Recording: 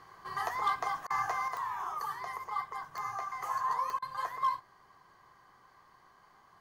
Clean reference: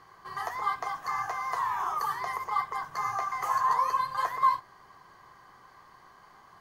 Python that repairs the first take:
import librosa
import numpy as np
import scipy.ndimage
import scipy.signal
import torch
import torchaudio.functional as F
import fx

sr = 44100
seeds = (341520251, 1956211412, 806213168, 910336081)

y = fx.fix_declip(x, sr, threshold_db=-23.0)
y = fx.fix_declick_ar(y, sr, threshold=10.0)
y = fx.fix_interpolate(y, sr, at_s=(1.07, 3.99), length_ms=31.0)
y = fx.gain(y, sr, db=fx.steps((0.0, 0.0), (1.48, 6.5)))